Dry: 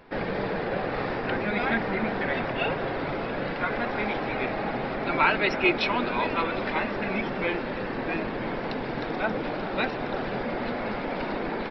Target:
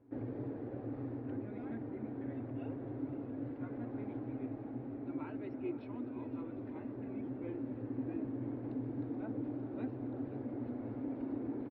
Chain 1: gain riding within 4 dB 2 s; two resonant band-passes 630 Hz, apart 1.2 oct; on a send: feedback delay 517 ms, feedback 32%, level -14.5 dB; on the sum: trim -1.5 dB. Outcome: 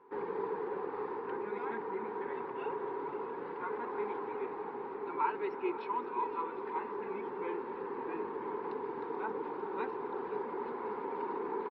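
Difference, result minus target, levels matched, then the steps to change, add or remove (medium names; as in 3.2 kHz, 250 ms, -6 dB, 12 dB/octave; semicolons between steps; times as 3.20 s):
250 Hz band -9.5 dB
change: two resonant band-passes 180 Hz, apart 1.2 oct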